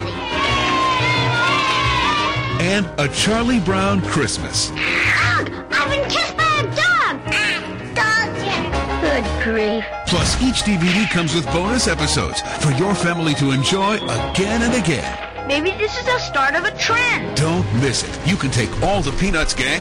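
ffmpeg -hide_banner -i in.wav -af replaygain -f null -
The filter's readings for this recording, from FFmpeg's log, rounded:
track_gain = -0.8 dB
track_peak = 0.236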